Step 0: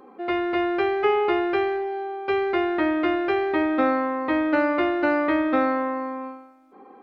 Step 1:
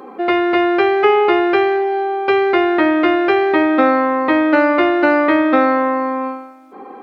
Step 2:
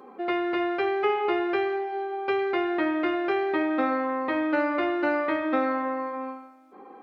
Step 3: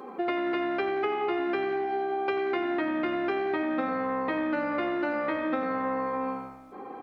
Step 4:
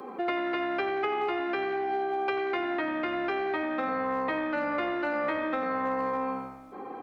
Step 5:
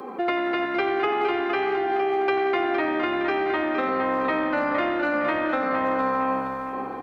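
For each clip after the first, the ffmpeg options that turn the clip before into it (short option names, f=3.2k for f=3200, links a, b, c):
-filter_complex "[0:a]highpass=f=180:p=1,asplit=2[a][b];[b]acompressor=threshold=-30dB:ratio=6,volume=2.5dB[c];[a][c]amix=inputs=2:normalize=0,volume=6dB"
-af "flanger=delay=4.6:depth=5.2:regen=-71:speed=0.31:shape=triangular,volume=-7.5dB"
-filter_complex "[0:a]acompressor=threshold=-32dB:ratio=6,asplit=5[a][b][c][d][e];[b]adelay=89,afreqshift=-67,volume=-13.5dB[f];[c]adelay=178,afreqshift=-134,volume=-21.5dB[g];[d]adelay=267,afreqshift=-201,volume=-29.4dB[h];[e]adelay=356,afreqshift=-268,volume=-37.4dB[i];[a][f][g][h][i]amix=inputs=5:normalize=0,volume=5.5dB"
-filter_complex "[0:a]acrossover=split=100|480|1200[a][b][c][d];[b]alimiter=level_in=8.5dB:limit=-24dB:level=0:latency=1,volume=-8.5dB[e];[c]volume=28.5dB,asoftclip=hard,volume=-28.5dB[f];[a][e][f][d]amix=inputs=4:normalize=0,volume=1dB"
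-af "aecho=1:1:462|924|1386|1848|2310:0.422|0.169|0.0675|0.027|0.0108,volume=5dB"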